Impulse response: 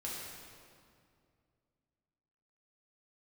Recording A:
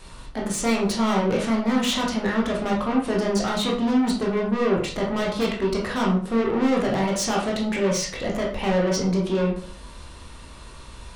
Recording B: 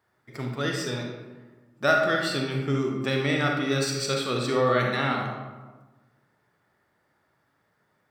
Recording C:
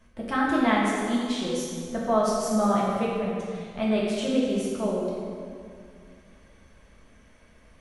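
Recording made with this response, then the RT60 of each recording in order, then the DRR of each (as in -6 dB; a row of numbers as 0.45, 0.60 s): C; 0.50, 1.3, 2.3 s; -3.5, 0.5, -6.0 dB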